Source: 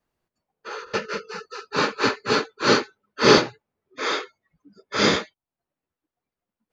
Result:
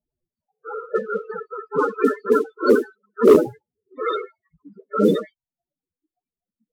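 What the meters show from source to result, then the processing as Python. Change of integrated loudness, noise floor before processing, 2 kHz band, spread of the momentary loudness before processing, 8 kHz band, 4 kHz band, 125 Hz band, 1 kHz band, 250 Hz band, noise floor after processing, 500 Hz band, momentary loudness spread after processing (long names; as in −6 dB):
+2.0 dB, below −85 dBFS, −7.5 dB, 19 LU, can't be measured, −17.5 dB, −2.0 dB, −1.5 dB, +4.5 dB, below −85 dBFS, +5.5 dB, 18 LU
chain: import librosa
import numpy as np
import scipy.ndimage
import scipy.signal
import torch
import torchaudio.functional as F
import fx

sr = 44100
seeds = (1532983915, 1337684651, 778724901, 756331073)

y = fx.noise_reduce_blind(x, sr, reduce_db=9)
y = fx.spec_topn(y, sr, count=8)
y = fx.mod_noise(y, sr, seeds[0], snr_db=30)
y = fx.env_lowpass(y, sr, base_hz=1100.0, full_db=-20.0)
y = np.clip(y, -10.0 ** (-13.0 / 20.0), 10.0 ** (-13.0 / 20.0))
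y = F.gain(torch.from_numpy(y), 8.0).numpy()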